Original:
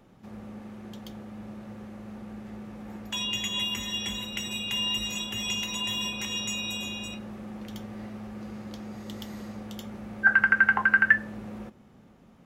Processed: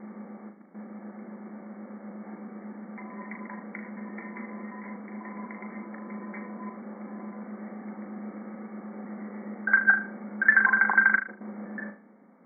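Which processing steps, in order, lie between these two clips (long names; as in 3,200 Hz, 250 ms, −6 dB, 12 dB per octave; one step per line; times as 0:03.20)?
slices reordered back to front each 124 ms, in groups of 6
linear-phase brick-wall band-pass 180–2,300 Hz
flutter between parallel walls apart 6.6 metres, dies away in 0.36 s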